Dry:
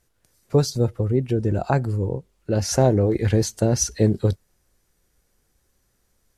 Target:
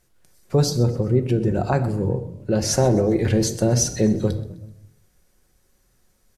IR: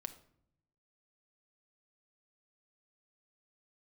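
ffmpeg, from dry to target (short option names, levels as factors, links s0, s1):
-filter_complex "[0:a]asplit=2[s0][s1];[s1]alimiter=limit=0.15:level=0:latency=1,volume=1.12[s2];[s0][s2]amix=inputs=2:normalize=0,asplit=4[s3][s4][s5][s6];[s4]adelay=128,afreqshift=37,volume=0.112[s7];[s5]adelay=256,afreqshift=74,volume=0.0495[s8];[s6]adelay=384,afreqshift=111,volume=0.0216[s9];[s3][s7][s8][s9]amix=inputs=4:normalize=0[s10];[1:a]atrim=start_sample=2205[s11];[s10][s11]afir=irnorm=-1:irlink=0"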